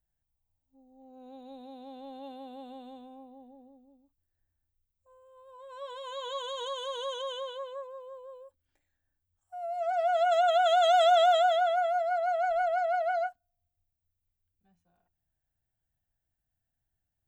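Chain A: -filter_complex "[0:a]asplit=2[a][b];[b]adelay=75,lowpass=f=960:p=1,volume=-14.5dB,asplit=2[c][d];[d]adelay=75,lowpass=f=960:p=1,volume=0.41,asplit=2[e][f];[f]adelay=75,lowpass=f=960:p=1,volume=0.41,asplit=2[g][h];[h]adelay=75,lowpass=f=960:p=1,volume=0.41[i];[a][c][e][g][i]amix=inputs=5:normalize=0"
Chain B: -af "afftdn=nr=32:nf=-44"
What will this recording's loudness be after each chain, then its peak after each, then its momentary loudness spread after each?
-27.0, -27.5 LUFS; -13.5, -14.5 dBFS; 24, 23 LU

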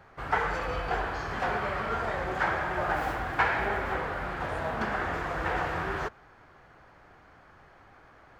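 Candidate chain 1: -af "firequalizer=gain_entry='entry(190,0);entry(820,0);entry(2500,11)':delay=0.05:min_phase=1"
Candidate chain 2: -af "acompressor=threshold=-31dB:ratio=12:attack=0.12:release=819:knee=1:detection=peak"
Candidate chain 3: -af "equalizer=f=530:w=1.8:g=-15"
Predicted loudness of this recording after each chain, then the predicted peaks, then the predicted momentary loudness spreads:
-26.5, -40.0, -32.5 LUFS; -6.0, -29.0, -13.0 dBFS; 7, 16, 6 LU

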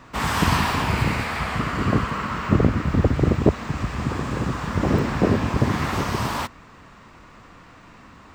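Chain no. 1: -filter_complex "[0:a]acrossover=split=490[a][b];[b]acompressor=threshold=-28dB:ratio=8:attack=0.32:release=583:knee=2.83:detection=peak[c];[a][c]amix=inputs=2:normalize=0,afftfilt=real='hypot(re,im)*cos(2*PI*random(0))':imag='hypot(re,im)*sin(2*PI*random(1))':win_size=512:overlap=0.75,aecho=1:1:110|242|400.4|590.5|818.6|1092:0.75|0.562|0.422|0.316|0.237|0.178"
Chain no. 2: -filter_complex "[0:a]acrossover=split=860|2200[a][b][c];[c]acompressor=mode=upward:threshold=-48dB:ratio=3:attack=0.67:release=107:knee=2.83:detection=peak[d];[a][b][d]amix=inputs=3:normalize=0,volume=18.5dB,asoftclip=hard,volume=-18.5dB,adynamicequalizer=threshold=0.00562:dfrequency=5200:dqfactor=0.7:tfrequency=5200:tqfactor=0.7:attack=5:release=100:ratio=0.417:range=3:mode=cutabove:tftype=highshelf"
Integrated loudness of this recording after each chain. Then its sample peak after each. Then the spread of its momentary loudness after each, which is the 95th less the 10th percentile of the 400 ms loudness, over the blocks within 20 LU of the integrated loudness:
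-27.5, -25.0 LUFS; -10.0, -18.0 dBFS; 11, 4 LU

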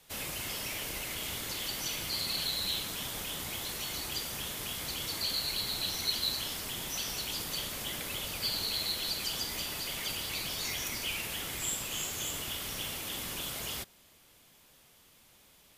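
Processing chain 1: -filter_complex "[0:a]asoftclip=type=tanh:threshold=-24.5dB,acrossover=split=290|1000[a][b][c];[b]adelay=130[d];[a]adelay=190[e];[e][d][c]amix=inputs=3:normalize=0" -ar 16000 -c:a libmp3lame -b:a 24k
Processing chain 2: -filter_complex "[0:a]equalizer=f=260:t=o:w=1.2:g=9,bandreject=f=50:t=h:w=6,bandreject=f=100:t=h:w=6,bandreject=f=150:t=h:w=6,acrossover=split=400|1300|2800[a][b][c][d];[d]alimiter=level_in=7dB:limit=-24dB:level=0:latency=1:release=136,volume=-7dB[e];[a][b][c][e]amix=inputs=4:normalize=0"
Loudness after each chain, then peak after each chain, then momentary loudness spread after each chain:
-36.0, -35.5 LUFS; -22.5, -24.0 dBFS; 7, 2 LU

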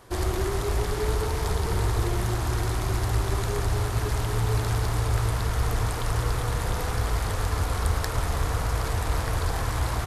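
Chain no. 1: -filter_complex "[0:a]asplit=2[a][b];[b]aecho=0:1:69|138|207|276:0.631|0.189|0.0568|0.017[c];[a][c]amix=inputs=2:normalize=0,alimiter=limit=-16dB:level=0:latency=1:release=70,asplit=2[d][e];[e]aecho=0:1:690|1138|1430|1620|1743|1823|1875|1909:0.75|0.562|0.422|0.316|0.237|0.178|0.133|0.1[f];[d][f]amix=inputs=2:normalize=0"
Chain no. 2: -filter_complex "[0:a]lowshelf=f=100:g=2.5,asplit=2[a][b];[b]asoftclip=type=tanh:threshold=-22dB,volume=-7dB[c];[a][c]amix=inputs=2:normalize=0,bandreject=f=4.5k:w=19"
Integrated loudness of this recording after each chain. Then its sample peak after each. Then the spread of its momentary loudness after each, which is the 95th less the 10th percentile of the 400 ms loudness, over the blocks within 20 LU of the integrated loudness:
-23.5, -24.0 LUFS; -8.5, -8.0 dBFS; 3, 2 LU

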